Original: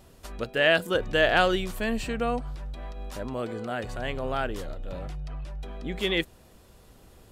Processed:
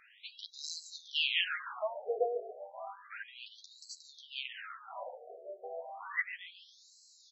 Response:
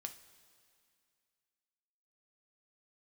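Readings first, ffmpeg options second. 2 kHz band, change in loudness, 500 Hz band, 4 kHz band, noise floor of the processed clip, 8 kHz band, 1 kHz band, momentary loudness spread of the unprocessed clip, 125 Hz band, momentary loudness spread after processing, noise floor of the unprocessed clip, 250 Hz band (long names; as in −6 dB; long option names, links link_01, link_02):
−10.5 dB, −10.0 dB, −12.0 dB, −4.5 dB, −62 dBFS, −3.5 dB, −12.0 dB, 17 LU, below −40 dB, 17 LU, −55 dBFS, below −35 dB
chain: -filter_complex "[0:a]asplit=2[link_01][link_02];[link_02]acompressor=threshold=-39dB:ratio=6,volume=0dB[link_03];[link_01][link_03]amix=inputs=2:normalize=0,flanger=delay=8.7:depth=8.3:regen=3:speed=0.31:shape=triangular,asoftclip=type=tanh:threshold=-17.5dB,asplit=5[link_04][link_05][link_06][link_07][link_08];[link_05]adelay=141,afreqshift=-38,volume=-15dB[link_09];[link_06]adelay=282,afreqshift=-76,volume=-21.6dB[link_10];[link_07]adelay=423,afreqshift=-114,volume=-28.1dB[link_11];[link_08]adelay=564,afreqshift=-152,volume=-34.7dB[link_12];[link_04][link_09][link_10][link_11][link_12]amix=inputs=5:normalize=0,afftfilt=real='re*between(b*sr/1024,510*pow(5600/510,0.5+0.5*sin(2*PI*0.32*pts/sr))/1.41,510*pow(5600/510,0.5+0.5*sin(2*PI*0.32*pts/sr))*1.41)':imag='im*between(b*sr/1024,510*pow(5600/510,0.5+0.5*sin(2*PI*0.32*pts/sr))/1.41,510*pow(5600/510,0.5+0.5*sin(2*PI*0.32*pts/sr))*1.41)':win_size=1024:overlap=0.75,volume=4.5dB"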